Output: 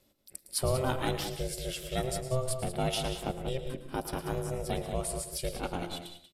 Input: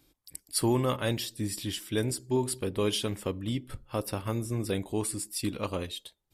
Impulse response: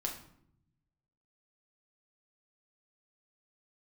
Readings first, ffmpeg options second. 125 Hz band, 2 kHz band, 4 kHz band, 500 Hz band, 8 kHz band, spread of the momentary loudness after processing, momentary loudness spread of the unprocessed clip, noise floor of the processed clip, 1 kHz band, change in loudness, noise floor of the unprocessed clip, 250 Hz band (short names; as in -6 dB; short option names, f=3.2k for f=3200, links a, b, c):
-2.5 dB, -1.0 dB, -2.5 dB, -1.5 dB, -2.5 dB, 7 LU, 8 LU, -67 dBFS, +2.0 dB, -2.5 dB, -73 dBFS, -6.5 dB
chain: -filter_complex "[0:a]asplit=2[a][b];[b]adelay=186.6,volume=-8dB,highshelf=f=4k:g=-4.2[c];[a][c]amix=inputs=2:normalize=0,aeval=exprs='val(0)*sin(2*PI*260*n/s)':c=same,asplit=2[d][e];[1:a]atrim=start_sample=2205,atrim=end_sample=6615,adelay=109[f];[e][f]afir=irnorm=-1:irlink=0,volume=-11.5dB[g];[d][g]amix=inputs=2:normalize=0"